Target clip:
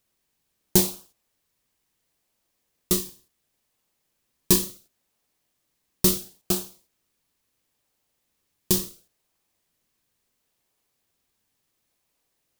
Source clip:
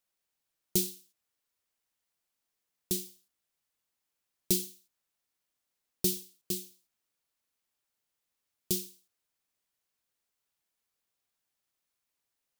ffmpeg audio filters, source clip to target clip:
ffmpeg -i in.wav -filter_complex "[0:a]bandreject=frequency=1400:width=14,asplit=2[link_01][link_02];[link_02]acrusher=samples=42:mix=1:aa=0.000001:lfo=1:lforange=42:lforate=0.72,volume=-10.5dB[link_03];[link_01][link_03]amix=inputs=2:normalize=0,volume=8.5dB" out.wav

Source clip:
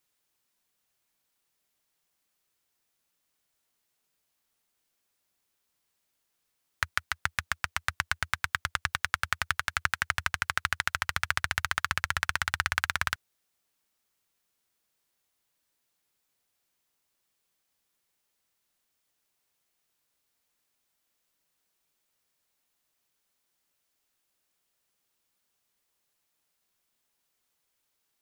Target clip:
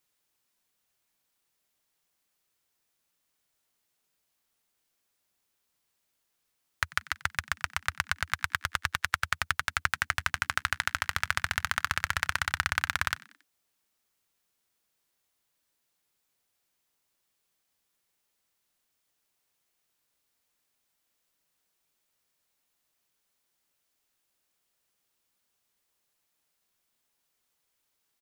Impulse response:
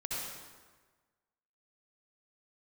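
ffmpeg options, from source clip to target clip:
-filter_complex "[0:a]asplit=4[link_01][link_02][link_03][link_04];[link_02]adelay=92,afreqshift=67,volume=-22dB[link_05];[link_03]adelay=184,afreqshift=134,volume=-28.7dB[link_06];[link_04]adelay=276,afreqshift=201,volume=-35.5dB[link_07];[link_01][link_05][link_06][link_07]amix=inputs=4:normalize=0"

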